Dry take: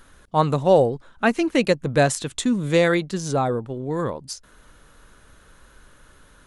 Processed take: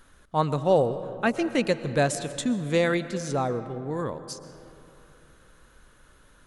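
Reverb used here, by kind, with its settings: algorithmic reverb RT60 3 s, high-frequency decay 0.45×, pre-delay 85 ms, DRR 12.5 dB; trim -5 dB

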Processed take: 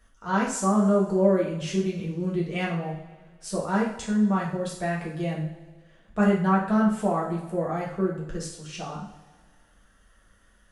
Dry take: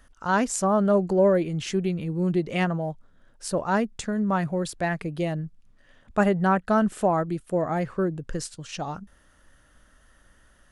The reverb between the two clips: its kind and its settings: two-slope reverb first 0.51 s, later 1.8 s, from -16 dB, DRR -5 dB; trim -8 dB

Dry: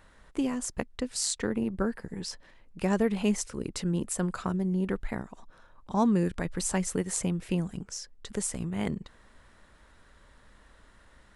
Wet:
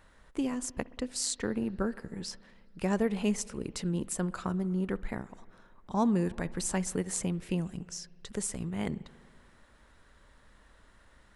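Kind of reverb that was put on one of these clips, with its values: spring tank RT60 2.1 s, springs 60 ms, chirp 25 ms, DRR 19 dB; trim -2.5 dB

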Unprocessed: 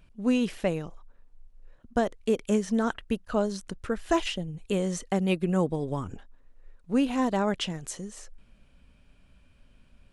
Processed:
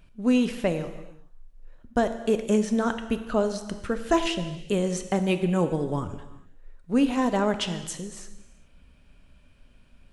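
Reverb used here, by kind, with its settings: gated-style reverb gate 440 ms falling, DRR 8.5 dB; trim +2 dB

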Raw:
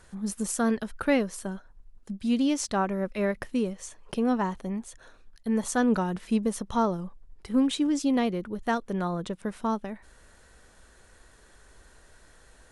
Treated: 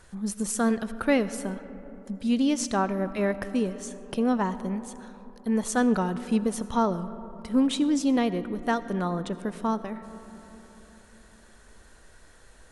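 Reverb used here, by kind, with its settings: algorithmic reverb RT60 3.8 s, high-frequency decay 0.3×, pre-delay 40 ms, DRR 13.5 dB; trim +1 dB

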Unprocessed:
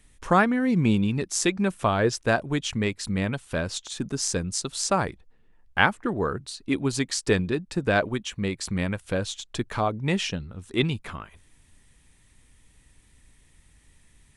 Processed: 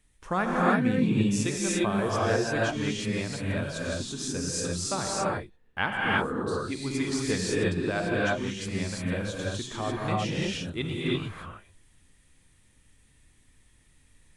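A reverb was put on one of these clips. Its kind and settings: gated-style reverb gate 370 ms rising, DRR -5.5 dB; trim -9 dB

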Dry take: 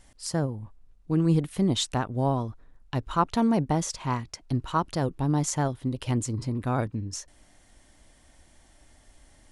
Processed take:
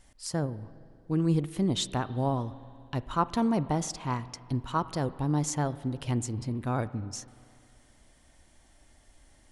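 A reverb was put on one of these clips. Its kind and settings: spring tank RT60 2.4 s, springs 33/47 ms, chirp 50 ms, DRR 15.5 dB; trim -3 dB

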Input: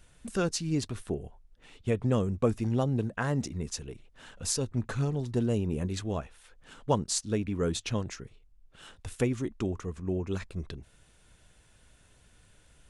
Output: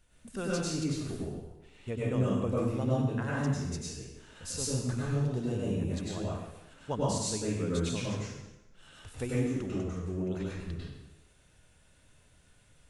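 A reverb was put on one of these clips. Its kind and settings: plate-style reverb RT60 0.98 s, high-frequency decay 0.9×, pre-delay 85 ms, DRR -6.5 dB; trim -9 dB

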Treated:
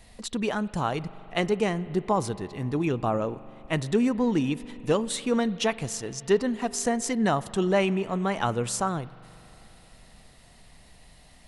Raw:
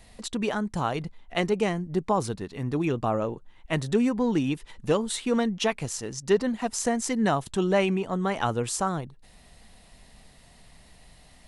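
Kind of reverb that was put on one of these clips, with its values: spring tank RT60 3.9 s, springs 41 ms, chirp 20 ms, DRR 17 dB

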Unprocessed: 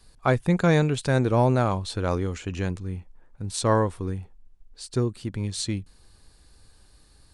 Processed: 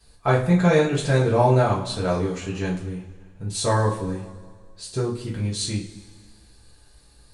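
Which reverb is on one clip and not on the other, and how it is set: two-slope reverb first 0.33 s, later 1.8 s, from -18 dB, DRR -6.5 dB; trim -4.5 dB

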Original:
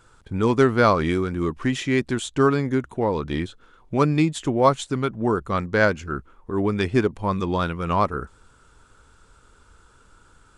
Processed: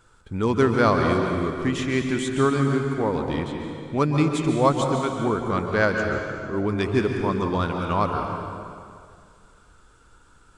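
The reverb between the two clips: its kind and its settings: plate-style reverb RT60 2.2 s, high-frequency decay 0.85×, pre-delay 120 ms, DRR 3 dB; trim -2.5 dB

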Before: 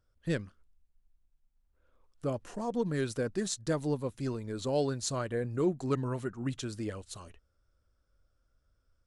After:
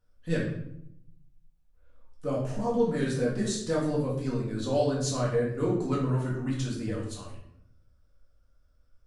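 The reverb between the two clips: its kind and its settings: simulated room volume 160 m³, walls mixed, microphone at 1.9 m; trim -3.5 dB

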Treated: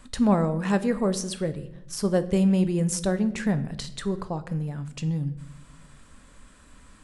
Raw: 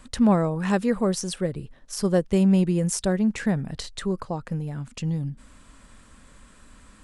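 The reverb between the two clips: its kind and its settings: simulated room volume 230 m³, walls mixed, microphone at 0.31 m; trim -1.5 dB

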